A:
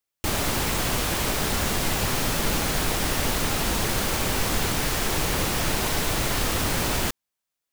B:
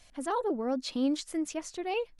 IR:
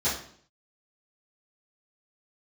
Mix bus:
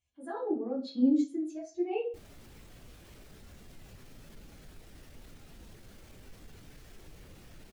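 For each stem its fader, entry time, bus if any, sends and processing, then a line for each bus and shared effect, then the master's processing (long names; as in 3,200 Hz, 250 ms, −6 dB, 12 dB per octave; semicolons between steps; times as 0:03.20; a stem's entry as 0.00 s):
−6.5 dB, 1.90 s, no send, brickwall limiter −21.5 dBFS, peak gain reduction 10 dB; soft clipping −23.5 dBFS, distortion −21 dB
−2.5 dB, 0.00 s, send −8 dB, rippled gain that drifts along the octave scale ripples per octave 0.69, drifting +1.6 Hz, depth 6 dB; high-pass filter 62 Hz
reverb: on, RT60 0.55 s, pre-delay 3 ms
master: parametric band 960 Hz −4.5 dB 0.94 octaves; every bin expanded away from the loudest bin 1.5 to 1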